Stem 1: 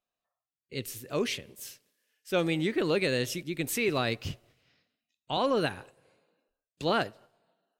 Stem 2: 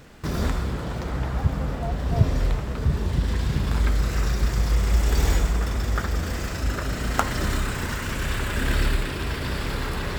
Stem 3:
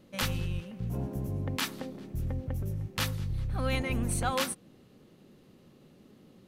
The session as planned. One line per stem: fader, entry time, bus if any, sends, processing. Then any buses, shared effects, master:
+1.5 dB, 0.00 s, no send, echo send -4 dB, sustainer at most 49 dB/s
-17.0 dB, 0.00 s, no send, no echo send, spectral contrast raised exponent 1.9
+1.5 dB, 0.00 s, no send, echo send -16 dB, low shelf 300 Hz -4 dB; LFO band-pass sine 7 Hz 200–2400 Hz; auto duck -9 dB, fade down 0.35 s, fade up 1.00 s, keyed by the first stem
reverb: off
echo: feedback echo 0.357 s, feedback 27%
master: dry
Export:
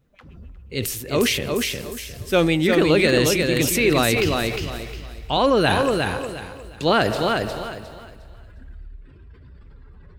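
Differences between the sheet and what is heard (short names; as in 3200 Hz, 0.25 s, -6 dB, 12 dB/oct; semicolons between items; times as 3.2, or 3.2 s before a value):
stem 1 +1.5 dB -> +9.0 dB; stem 3 +1.5 dB -> -9.5 dB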